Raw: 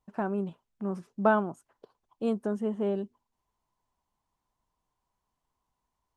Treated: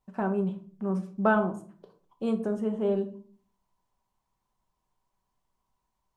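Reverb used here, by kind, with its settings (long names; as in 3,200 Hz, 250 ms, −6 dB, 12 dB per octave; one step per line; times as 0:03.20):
rectangular room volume 390 cubic metres, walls furnished, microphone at 1.1 metres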